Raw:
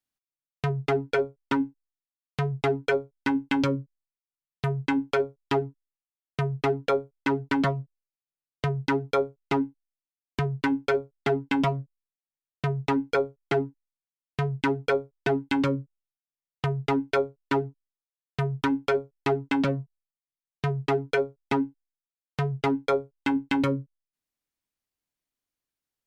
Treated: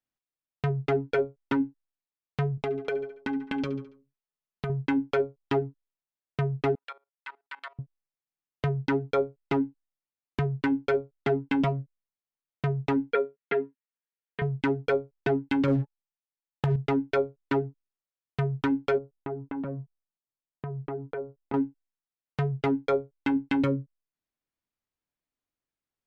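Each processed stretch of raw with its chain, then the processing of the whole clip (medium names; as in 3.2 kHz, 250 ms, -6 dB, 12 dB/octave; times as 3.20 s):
2.57–4.70 s: comb 4.7 ms + feedback delay 70 ms, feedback 42%, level -17 dB + compression 4:1, threshold -26 dBFS
6.75–7.79 s: Bessel high-pass 1.5 kHz, order 4 + peaking EQ 6.1 kHz -9.5 dB 0.41 oct + level held to a coarse grid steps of 18 dB
13.13–14.42 s: cabinet simulation 270–3400 Hz, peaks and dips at 290 Hz -9 dB, 710 Hz -9 dB, 1.1 kHz -6 dB, 1.7 kHz +5 dB + comb 4.3 ms, depth 69%
15.68–16.76 s: compression 2:1, threshold -32 dBFS + waveshaping leveller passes 3 + small resonant body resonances 860/1700 Hz, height 10 dB
18.98–21.54 s: low-pass 1.3 kHz + compression 2.5:1, threshold -34 dBFS
whole clip: low-pass 2.2 kHz 6 dB/octave; dynamic bell 1 kHz, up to -5 dB, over -41 dBFS, Q 1.9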